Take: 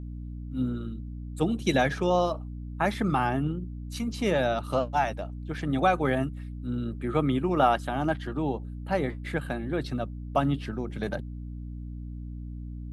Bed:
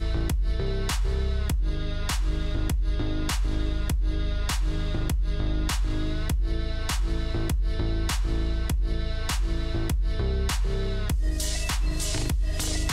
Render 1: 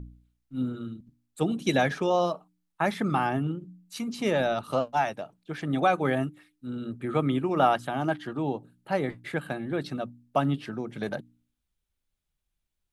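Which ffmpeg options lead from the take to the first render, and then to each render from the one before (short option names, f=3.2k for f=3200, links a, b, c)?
-af "bandreject=f=60:t=h:w=4,bandreject=f=120:t=h:w=4,bandreject=f=180:t=h:w=4,bandreject=f=240:t=h:w=4,bandreject=f=300:t=h:w=4"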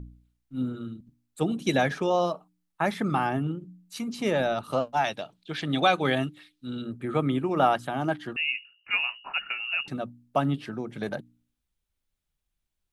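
-filter_complex "[0:a]asettb=1/sr,asplit=3[a][b][c];[a]atrim=end=5.044[d];[b]atrim=start=5.04:end=6.82,asetpts=PTS-STARTPTS,afade=t=in:d=0.004:c=qsin,afade=t=out:st=1.776:d=0.004:c=qsin,equalizer=f=3.7k:t=o:w=1.2:g=13[e];[c]atrim=start=6.816[f];[d][e]acrossfade=d=0.004:c1=hsin:c2=qsin[g];[g][f]acrossfade=d=0.004:c1=qsin:c2=hsin,asettb=1/sr,asplit=3[h][i][j];[h]atrim=end=8.364[k];[i]atrim=start=8.36:end=9.88,asetpts=PTS-STARTPTS,afade=t=in:d=0.004:c=qsin,afade=t=out:st=1.516:d=0.004:c=qsin,lowpass=f=2.6k:t=q:w=0.5098,lowpass=f=2.6k:t=q:w=0.6013,lowpass=f=2.6k:t=q:w=0.9,lowpass=f=2.6k:t=q:w=2.563,afreqshift=-3000[l];[j]atrim=start=9.876[m];[k][l]acrossfade=d=0.004:c1=hsin:c2=qsin[n];[n][m]acrossfade=d=0.004:c1=qsin:c2=hsin"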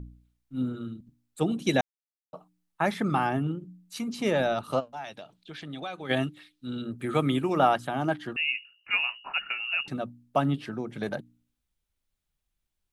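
-filter_complex "[0:a]asplit=3[a][b][c];[a]afade=t=out:st=4.79:d=0.02[d];[b]acompressor=threshold=-45dB:ratio=2:attack=3.2:release=140:knee=1:detection=peak,afade=t=in:st=4.79:d=0.02,afade=t=out:st=6.09:d=0.02[e];[c]afade=t=in:st=6.09:d=0.02[f];[d][e][f]amix=inputs=3:normalize=0,asplit=3[g][h][i];[g]afade=t=out:st=6.98:d=0.02[j];[h]highshelf=f=2.9k:g=10.5,afade=t=in:st=6.98:d=0.02,afade=t=out:st=7.56:d=0.02[k];[i]afade=t=in:st=7.56:d=0.02[l];[j][k][l]amix=inputs=3:normalize=0,asplit=3[m][n][o];[m]atrim=end=1.81,asetpts=PTS-STARTPTS,afade=t=out:st=1.806:d=0.004:c=hsin[p];[n]atrim=start=1.81:end=2.33,asetpts=PTS-STARTPTS,volume=0[q];[o]atrim=start=2.33,asetpts=PTS-STARTPTS,afade=t=in:d=0.004:c=hsin[r];[p][q][r]concat=n=3:v=0:a=1"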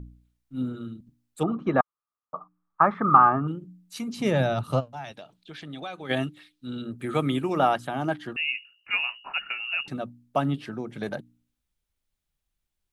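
-filter_complex "[0:a]asettb=1/sr,asplit=3[a][b][c];[a]atrim=end=1.434[d];[b]atrim=start=1.43:end=3.48,asetpts=PTS-STARTPTS,afade=t=in:d=0.004:c=qsin,afade=t=out:st=2.046:d=0.004:c=qsin,lowpass=f=1.2k:t=q:w=10[e];[c]atrim=start=3.476[f];[d][e]acrossfade=d=0.004:c1=hsin:c2=qsin[g];[g][f]acrossfade=d=0.004:c1=qsin:c2=hsin,asettb=1/sr,asplit=3[h][i][j];[h]atrim=end=4.174[k];[i]atrim=start=4.17:end=5.12,asetpts=PTS-STARTPTS,afade=t=in:d=0.004:c=qsin,afade=t=out:st=0.946:d=0.004:c=qsin,equalizer=f=120:w=1.5:g=13.5[l];[j]atrim=start=5.116[m];[k][l]acrossfade=d=0.004:c1=hsin:c2=qsin[n];[n][m]acrossfade=d=0.004:c1=qsin:c2=hsin"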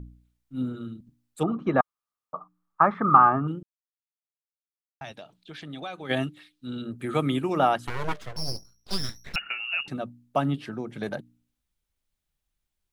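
-filter_complex "[0:a]asettb=1/sr,asplit=3[a][b][c];[a]atrim=end=7.874[d];[b]atrim=start=7.87:end=9.36,asetpts=PTS-STARTPTS,afade=t=in:d=0.004:c=qsin,afade=t=out:st=1.486:d=0.004:c=qsin,aeval=exprs='abs(val(0))':c=same[e];[c]atrim=start=9.356[f];[d][e]acrossfade=d=0.004:c1=hsin:c2=qsin[g];[g][f]acrossfade=d=0.004:c1=qsin:c2=hsin,asplit=3[h][i][j];[h]atrim=end=3.63,asetpts=PTS-STARTPTS,afade=t=out:st=3.626:d=0.004:c=hsin[k];[i]atrim=start=3.63:end=5.01,asetpts=PTS-STARTPTS,volume=0[l];[j]atrim=start=5.01,asetpts=PTS-STARTPTS,afade=t=in:d=0.004:c=hsin[m];[k][l][m]concat=n=3:v=0:a=1"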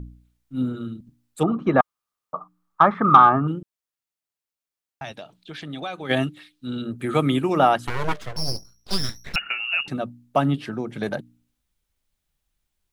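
-af "acontrast=23"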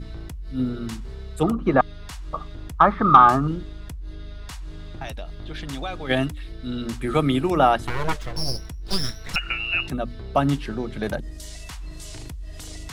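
-filter_complex "[1:a]volume=-10dB[a];[0:a][a]amix=inputs=2:normalize=0"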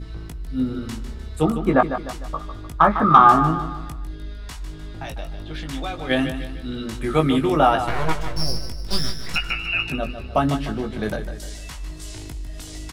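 -filter_complex "[0:a]asplit=2[a][b];[b]adelay=19,volume=-5.5dB[c];[a][c]amix=inputs=2:normalize=0,aecho=1:1:151|302|453|604|755:0.316|0.139|0.0612|0.0269|0.0119"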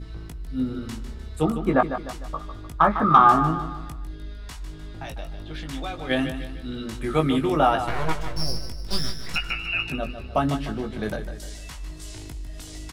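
-af "volume=-3dB"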